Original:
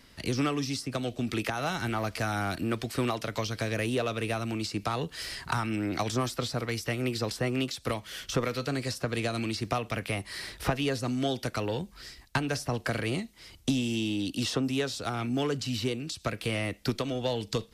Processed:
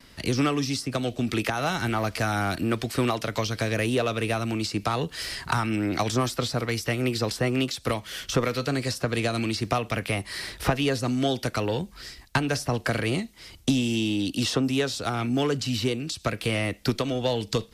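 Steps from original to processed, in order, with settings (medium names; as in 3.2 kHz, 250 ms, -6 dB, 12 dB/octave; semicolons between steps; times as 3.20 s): gate with hold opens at -50 dBFS; trim +4.5 dB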